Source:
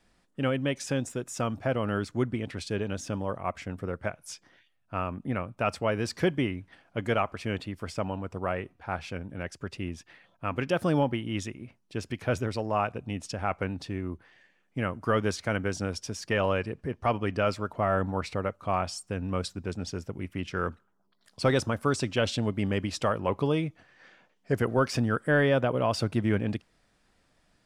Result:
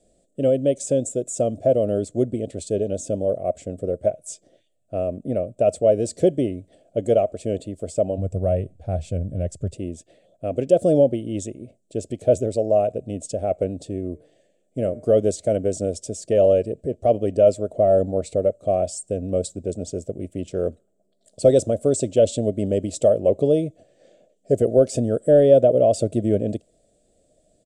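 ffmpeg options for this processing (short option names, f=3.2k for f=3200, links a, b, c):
-filter_complex "[0:a]asplit=3[a][b][c];[a]afade=t=out:st=8.17:d=0.02[d];[b]asubboost=boost=6:cutoff=140,afade=t=in:st=8.17:d=0.02,afade=t=out:st=9.73:d=0.02[e];[c]afade=t=in:st=9.73:d=0.02[f];[d][e][f]amix=inputs=3:normalize=0,asplit=3[g][h][i];[g]afade=t=out:st=14.13:d=0.02[j];[h]bandreject=f=149.9:t=h:w=4,bandreject=f=299.8:t=h:w=4,bandreject=f=449.7:t=h:w=4,bandreject=f=599.6:t=h:w=4,bandreject=f=749.5:t=h:w=4,bandreject=f=899.4:t=h:w=4,bandreject=f=1.0493k:t=h:w=4,bandreject=f=1.1992k:t=h:w=4,bandreject=f=1.3491k:t=h:w=4,bandreject=f=1.499k:t=h:w=4,bandreject=f=1.6489k:t=h:w=4,bandreject=f=1.7988k:t=h:w=4,bandreject=f=1.9487k:t=h:w=4,bandreject=f=2.0986k:t=h:w=4,bandreject=f=2.2485k:t=h:w=4,bandreject=f=2.3984k:t=h:w=4,afade=t=in:st=14.13:d=0.02,afade=t=out:st=15.07:d=0.02[k];[i]afade=t=in:st=15.07:d=0.02[l];[j][k][l]amix=inputs=3:normalize=0,firequalizer=gain_entry='entry(170,0);entry(630,13);entry(910,-22);entry(1700,-19);entry(3500,-5);entry(5300,-7);entry(7700,12);entry(12000,-9)':delay=0.05:min_phase=1,volume=2.5dB"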